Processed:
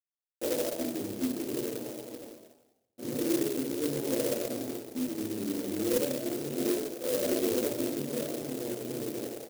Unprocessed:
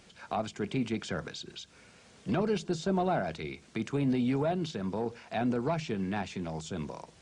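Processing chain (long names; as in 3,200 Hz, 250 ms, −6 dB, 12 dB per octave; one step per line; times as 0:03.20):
hold until the input has moved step −33 dBFS
comb filter 6.2 ms, depth 90%
downward compressor 5 to 1, threshold −35 dBFS, peak gain reduction 13 dB
slack as between gear wheels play −38 dBFS
flat-topped band-pass 510 Hz, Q 1.3
echo with shifted repeats 107 ms, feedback 35%, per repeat +98 Hz, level −5.5 dB
convolution reverb RT60 0.60 s, pre-delay 3 ms, DRR −12 dB
change of speed 0.76×
converter with an unsteady clock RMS 0.14 ms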